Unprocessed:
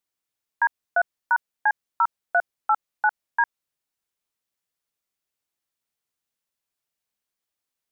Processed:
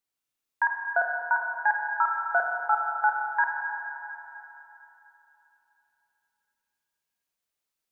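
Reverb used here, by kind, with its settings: Schroeder reverb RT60 3.3 s, combs from 25 ms, DRR 0.5 dB; gain -3 dB

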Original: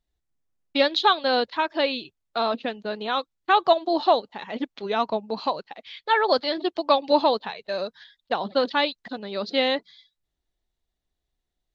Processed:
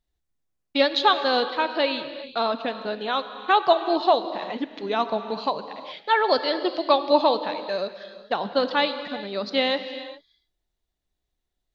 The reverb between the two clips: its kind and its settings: non-linear reverb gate 0.44 s flat, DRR 9.5 dB

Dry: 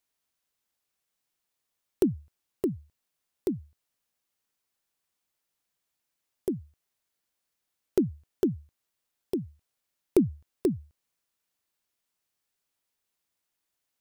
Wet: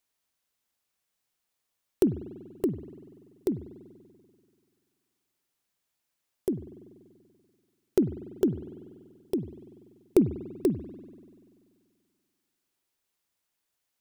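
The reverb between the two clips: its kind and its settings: spring tank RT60 2.1 s, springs 48 ms, chirp 55 ms, DRR 13 dB; gain +1 dB

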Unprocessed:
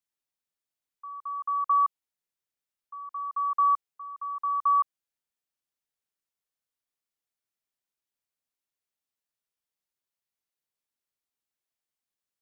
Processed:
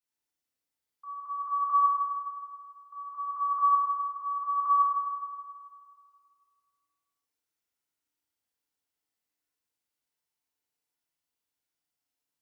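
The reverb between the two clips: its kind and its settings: FDN reverb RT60 2.1 s, low-frequency decay 1×, high-frequency decay 0.85×, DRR -7.5 dB; gain -5.5 dB

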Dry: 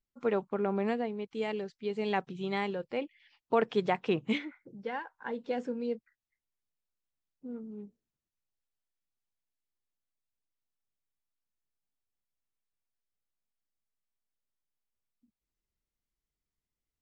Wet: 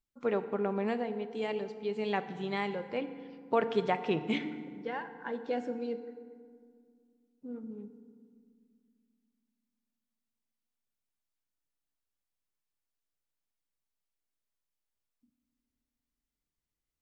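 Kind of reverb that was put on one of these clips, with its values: FDN reverb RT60 2 s, low-frequency decay 1.55×, high-frequency decay 0.55×, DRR 9.5 dB; gain -1 dB

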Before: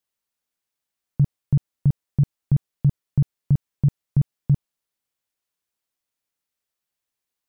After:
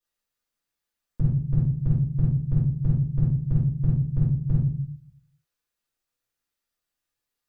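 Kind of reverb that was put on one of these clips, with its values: shoebox room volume 48 m³, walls mixed, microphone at 2.6 m; gain -12 dB

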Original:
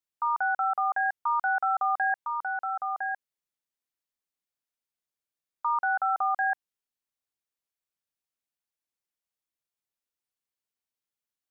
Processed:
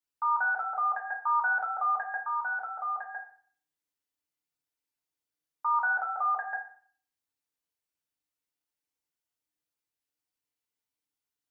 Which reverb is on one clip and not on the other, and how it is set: FDN reverb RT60 0.49 s, low-frequency decay 1.35×, high-frequency decay 1×, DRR -3.5 dB; gain -5 dB

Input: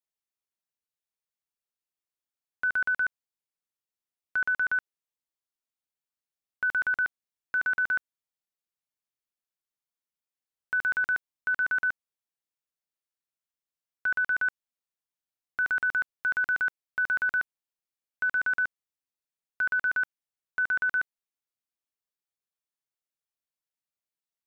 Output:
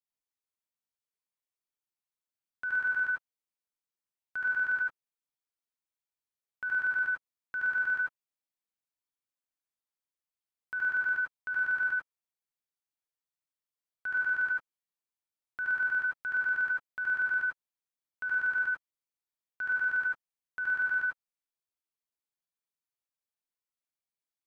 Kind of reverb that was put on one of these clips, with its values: non-linear reverb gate 0.12 s rising, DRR -2.5 dB; gain -8.5 dB

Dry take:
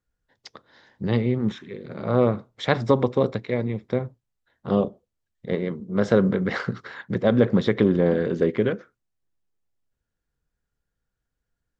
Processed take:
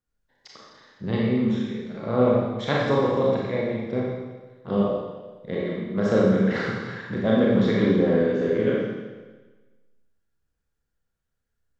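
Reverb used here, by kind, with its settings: Schroeder reverb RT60 1.3 s, combs from 28 ms, DRR -4.5 dB; gain -5.5 dB

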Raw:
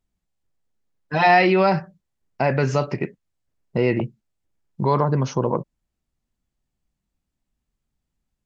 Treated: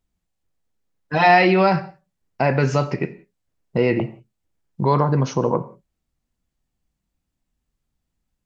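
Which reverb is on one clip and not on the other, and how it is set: non-linear reverb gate 0.21 s falling, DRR 12 dB; gain +1.5 dB

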